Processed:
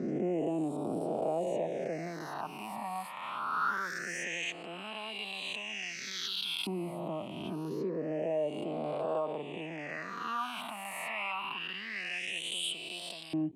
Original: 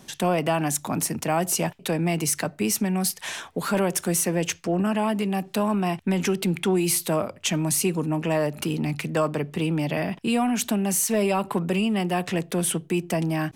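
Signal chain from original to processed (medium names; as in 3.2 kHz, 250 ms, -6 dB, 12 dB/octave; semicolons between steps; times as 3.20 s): reverse spectral sustain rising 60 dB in 2.02 s; phase shifter stages 6, 0.25 Hz, lowest notch 410–1800 Hz; LFO band-pass saw up 0.15 Hz 310–4300 Hz; in parallel at 0 dB: peak limiter -27.5 dBFS, peak gain reduction 12 dB; on the sum: trim -6.5 dB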